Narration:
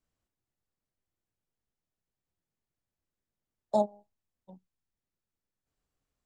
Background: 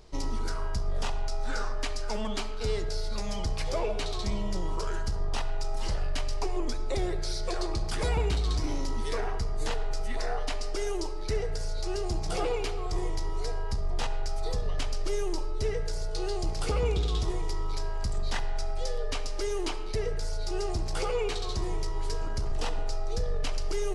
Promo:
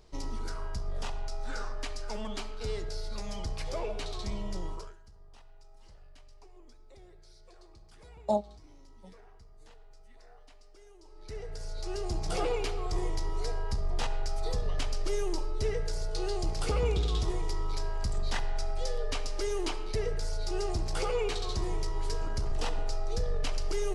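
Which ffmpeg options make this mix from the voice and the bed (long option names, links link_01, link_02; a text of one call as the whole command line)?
ffmpeg -i stem1.wav -i stem2.wav -filter_complex "[0:a]adelay=4550,volume=-1.5dB[link_01];[1:a]volume=19dB,afade=type=out:start_time=4.65:duration=0.3:silence=0.1,afade=type=in:start_time=11.02:duration=1.32:silence=0.0630957[link_02];[link_01][link_02]amix=inputs=2:normalize=0" out.wav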